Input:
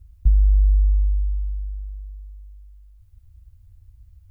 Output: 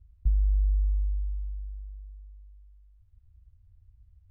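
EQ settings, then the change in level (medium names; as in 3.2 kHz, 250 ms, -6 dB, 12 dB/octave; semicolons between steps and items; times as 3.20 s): distance through air 220 m; -8.5 dB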